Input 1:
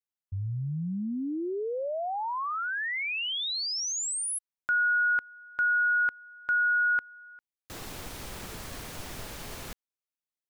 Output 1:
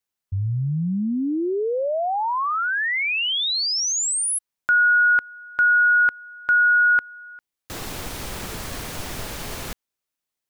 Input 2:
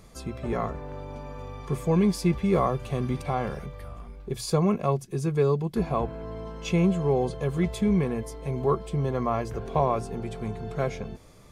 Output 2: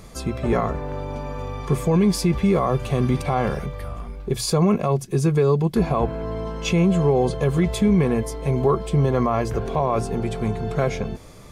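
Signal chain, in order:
brickwall limiter −18.5 dBFS
level +8.5 dB

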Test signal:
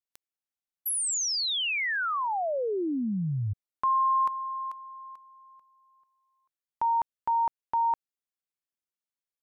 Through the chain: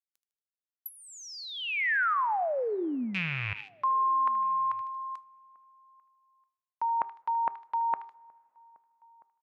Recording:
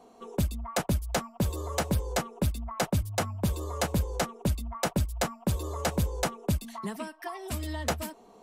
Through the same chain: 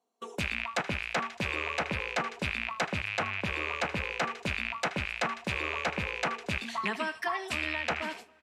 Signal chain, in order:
loose part that buzzes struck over −35 dBFS, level −25 dBFS
high-shelf EQ 2,500 Hz +7.5 dB
on a send: delay with a high-pass on its return 77 ms, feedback 44%, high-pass 1,500 Hz, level −12.5 dB
on the sum: noise gate −47 dBFS, range −30 dB
high-pass filter 270 Hz 6 dB per octave
hum removal 395.9 Hz, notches 3
reversed playback
downward compressor 4 to 1, threshold −34 dBFS
reversed playback
dynamic equaliser 1,900 Hz, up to +7 dB, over −49 dBFS, Q 0.75
treble cut that deepens with the level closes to 1,700 Hz, closed at −28 dBFS
slap from a distant wall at 220 metres, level −29 dB
coupled-rooms reverb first 0.24 s, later 3 s, from −19 dB, DRR 19.5 dB
level +4 dB

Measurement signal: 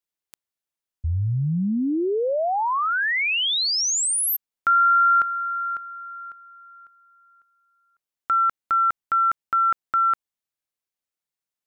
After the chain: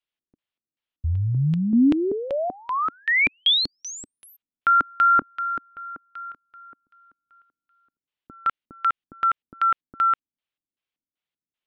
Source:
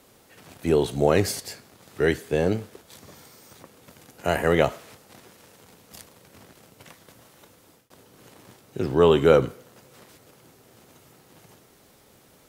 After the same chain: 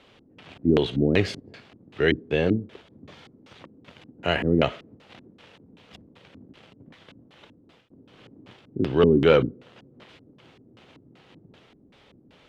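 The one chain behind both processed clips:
dynamic equaliser 840 Hz, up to −4 dB, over −38 dBFS, Q 1.7
gain into a clipping stage and back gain 9 dB
auto-filter low-pass square 2.6 Hz 280–3,100 Hz

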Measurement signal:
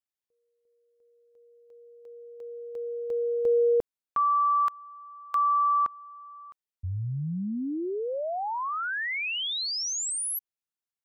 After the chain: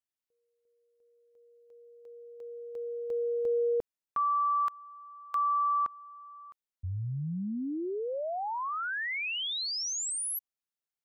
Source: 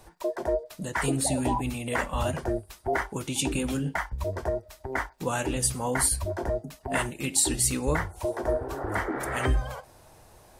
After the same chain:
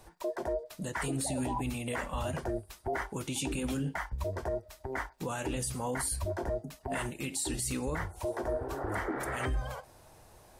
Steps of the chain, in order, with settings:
brickwall limiter −21.5 dBFS
level −3 dB

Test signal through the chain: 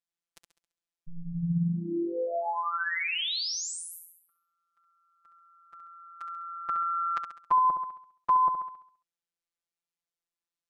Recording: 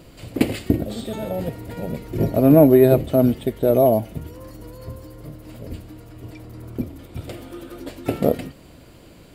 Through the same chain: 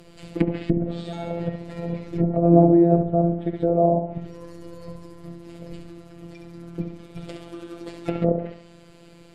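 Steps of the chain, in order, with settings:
low-pass filter 9,100 Hz 12 dB per octave
flutter between parallel walls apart 11.6 metres, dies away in 0.57 s
dynamic equaliser 120 Hz, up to +3 dB, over −30 dBFS, Q 0.83
phases set to zero 170 Hz
treble cut that deepens with the level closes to 800 Hz, closed at −16 dBFS
level −1 dB

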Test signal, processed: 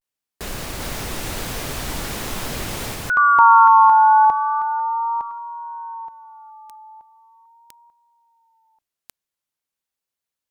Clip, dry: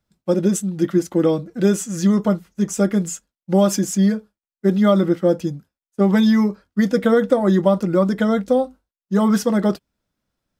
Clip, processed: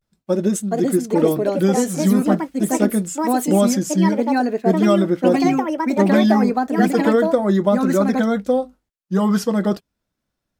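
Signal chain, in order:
pitch vibrato 0.41 Hz 68 cents
delay with pitch and tempo change per echo 483 ms, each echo +4 semitones, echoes 2
level −1 dB

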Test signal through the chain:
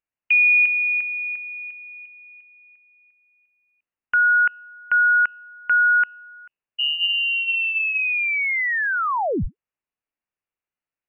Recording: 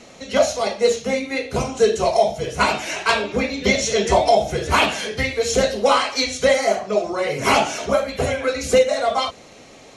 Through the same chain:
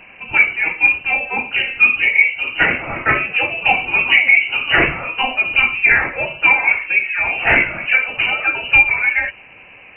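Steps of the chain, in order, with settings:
hum removal 80.56 Hz, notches 4
voice inversion scrambler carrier 2,900 Hz
level +3.5 dB

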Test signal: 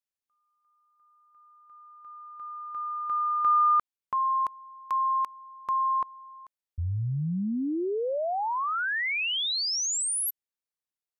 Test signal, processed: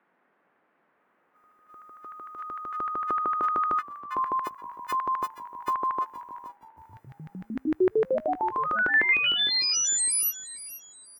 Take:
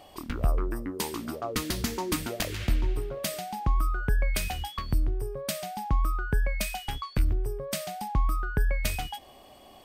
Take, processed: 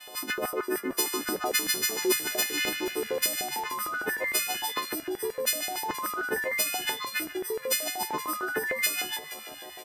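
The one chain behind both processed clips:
every partial snapped to a pitch grid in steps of 3 semitones
high-pass filter 94 Hz 12 dB per octave
downward compressor 5 to 1, threshold −28 dBFS
downward expander −51 dBFS
auto-filter high-pass square 6.6 Hz 360–1,800 Hz
noise in a band 180–1,800 Hz −73 dBFS
on a send: echo with shifted repeats 473 ms, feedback 33%, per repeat −77 Hz, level −15.5 dB
on the sum: level +3 dB

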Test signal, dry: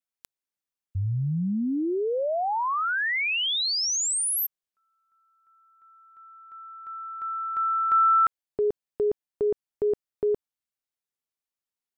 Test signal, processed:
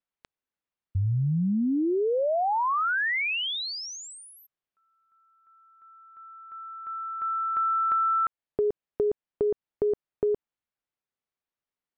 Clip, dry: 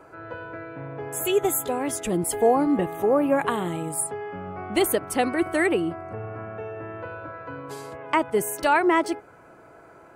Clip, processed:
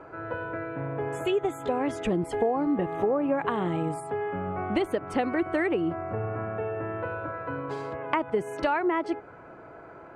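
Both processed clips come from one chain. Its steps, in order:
downward compressor 6 to 1, threshold −26 dBFS
Bessel low-pass filter 2,400 Hz, order 2
level +3.5 dB

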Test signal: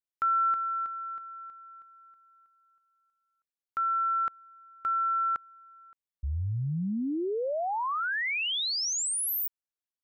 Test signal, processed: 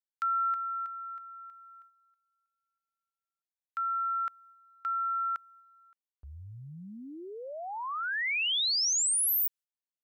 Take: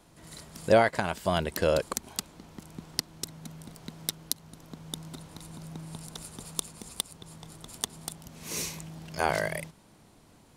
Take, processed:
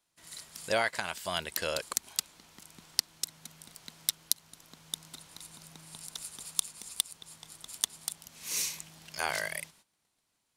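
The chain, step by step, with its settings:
noise gate −54 dBFS, range −16 dB
tilt shelving filter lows −9 dB
level −6 dB

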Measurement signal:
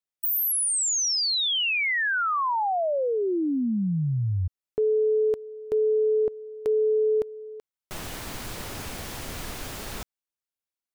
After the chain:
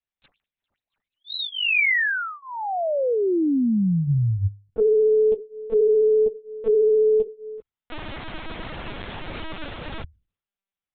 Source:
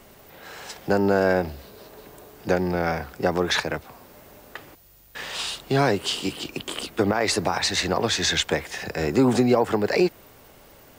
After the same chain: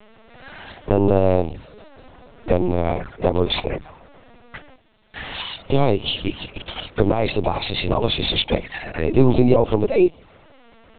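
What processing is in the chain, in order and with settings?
flanger swept by the level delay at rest 5.2 ms, full sweep at −21.5 dBFS
mains-hum notches 50/100/150 Hz
linear-prediction vocoder at 8 kHz pitch kept
level +5.5 dB

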